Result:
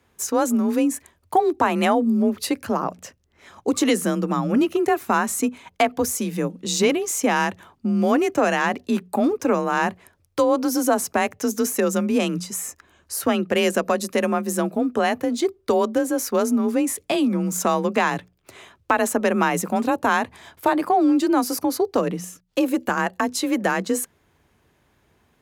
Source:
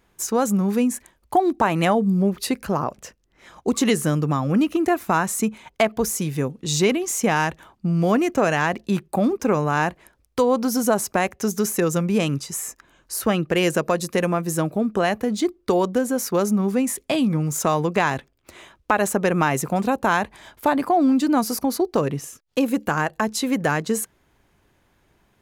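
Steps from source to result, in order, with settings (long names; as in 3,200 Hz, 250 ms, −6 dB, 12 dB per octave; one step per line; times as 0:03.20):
frequency shifter +33 Hz
mains-hum notches 60/120/180 Hz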